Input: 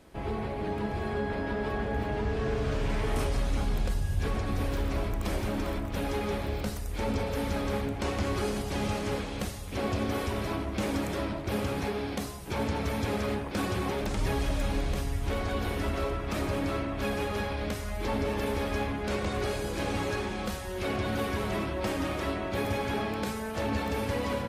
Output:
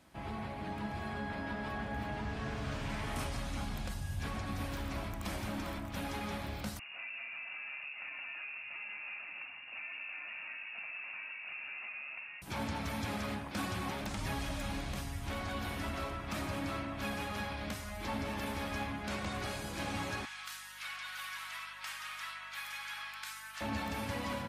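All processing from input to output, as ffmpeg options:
-filter_complex "[0:a]asettb=1/sr,asplit=3[a][b][c];[a]atrim=end=6.794[d];[b]atrim=start=6.79:end=12.42,asetpts=PTS-STARTPTS,afade=t=in:d=0.004:c=qsin,afade=t=out:st=5.626:d=0.004:c=qsin,highpass=140,acompressor=threshold=-38dB:ratio=4:attack=3.2:release=140:knee=1:detection=peak,lowpass=f=2.5k:t=q:w=0.5098,lowpass=f=2.5k:t=q:w=0.6013,lowpass=f=2.5k:t=q:w=0.9,lowpass=f=2.5k:t=q:w=2.563,afreqshift=-2900[e];[c]atrim=start=12.416[f];[d][e]acrossfade=d=0.004:c1=hsin:c2=qsin[g];[g][f]acrossfade=d=0.004:c1=qsin:c2=hsin,asettb=1/sr,asplit=3[h][i][j];[h]atrim=end=20.254[k];[i]atrim=start=20.25:end=23.61,asetpts=PTS-STARTPTS,afade=t=in:d=0.004:c=qsin,afade=t=out:st=3.356:d=0.004:c=qsin,highpass=f=1.2k:w=0.5412,highpass=f=1.2k:w=1.3066,aeval=exprs='val(0)+0.00112*(sin(2*PI*50*n/s)+sin(2*PI*2*50*n/s)/2+sin(2*PI*3*50*n/s)/3+sin(2*PI*4*50*n/s)/4+sin(2*PI*5*50*n/s)/5)':c=same[l];[j]atrim=start=23.606[m];[k][l]acrossfade=d=0.004:c1=hsin:c2=qsin[n];[n][m]acrossfade=d=0.004:c1=qsin:c2=hsin,highpass=f=120:p=1,equalizer=f=430:t=o:w=0.65:g=-13,volume=-3.5dB"

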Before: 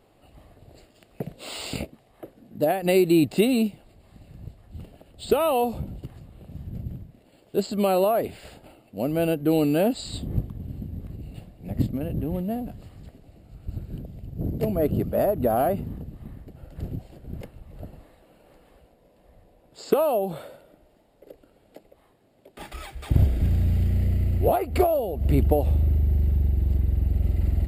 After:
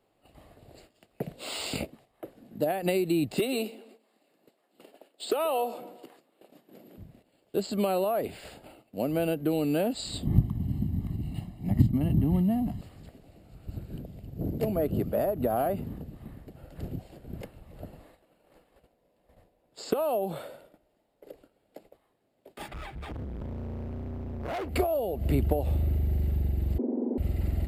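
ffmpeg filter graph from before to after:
-filter_complex "[0:a]asettb=1/sr,asplit=3[a][b][c];[a]atrim=end=3.394[d];[b]atrim=start=3.39:end=6.98,asetpts=PTS-STARTPTS,afade=t=in:d=0.004:c=qsin,afade=t=out:st=3.586:d=0.004:c=qsin,highpass=f=300:w=0.5412,highpass=f=300:w=1.3066,asoftclip=type=hard:threshold=-13.5dB,asplit=2[e][f];[f]adelay=129,lowpass=f=2.5k:p=1,volume=-19dB,asplit=2[g][h];[h]adelay=129,lowpass=f=2.5k:p=1,volume=0.47,asplit=2[i][j];[j]adelay=129,lowpass=f=2.5k:p=1,volume=0.47,asplit=2[k][l];[l]adelay=129,lowpass=f=2.5k:p=1,volume=0.47[m];[e][g][i][k][m]amix=inputs=5:normalize=0,atrim=end_sample=158319[n];[c]atrim=start=6.976[o];[d][n]acrossfade=d=0.004:c1=hsin:c2=qsin[p];[p][o]acrossfade=d=0.004:c1=qsin:c2=hsin,asettb=1/sr,asplit=3[q][r][s];[q]atrim=end=10.254[t];[r]atrim=start=10.25:end=12.81,asetpts=PTS-STARTPTS,afade=t=in:d=0.004:c=qsin,afade=t=out:st=2.556:d=0.004:c=qsin,equalizer=f=160:w=0.37:g=6,aecho=1:1:1:0.77,atrim=end_sample=112896[u];[s]atrim=start=12.806[v];[t][u]acrossfade=d=0.004:c1=hsin:c2=qsin[w];[w][v]acrossfade=d=0.004:c1=qsin:c2=hsin,asettb=1/sr,asplit=3[x][y][z];[x]atrim=end=22.684[aa];[y]atrim=start=22.68:end=24.69,asetpts=PTS-STARTPTS,afade=t=in:d=0.004:c=qsin,afade=t=out:st=2.006:d=0.004:c=qsin,bass=f=250:g=8,treble=f=4k:g=-14,acompressor=threshold=-19dB:ratio=12:attack=3.2:release=140:knee=1:detection=peak,asoftclip=type=hard:threshold=-30.5dB[ab];[z]atrim=start=24.686[ac];[aa][ab]acrossfade=d=0.004:c1=hsin:c2=qsin[ad];[ad][ac]acrossfade=d=0.004:c1=qsin:c2=hsin,asettb=1/sr,asplit=3[ae][af][ag];[ae]atrim=end=26.784[ah];[af]atrim=start=26.78:end=27.18,asetpts=PTS-STARTPTS,afade=t=in:d=0.004:c=qsin,afade=t=out:st=0.396:d=0.004:c=qsin,asuperpass=centerf=420:order=4:qfactor=0.64,aemphasis=mode=reproduction:type=riaa,afreqshift=170[ai];[ag]atrim=start=27.176[aj];[ah][ai]acrossfade=d=0.004:c1=hsin:c2=qsin[ak];[ak][aj]acrossfade=d=0.004:c1=qsin:c2=hsin,agate=range=-10dB:threshold=-53dB:ratio=16:detection=peak,lowshelf=f=140:g=-7.5,acrossover=split=140[al][am];[am]acompressor=threshold=-24dB:ratio=6[an];[al][an]amix=inputs=2:normalize=0"

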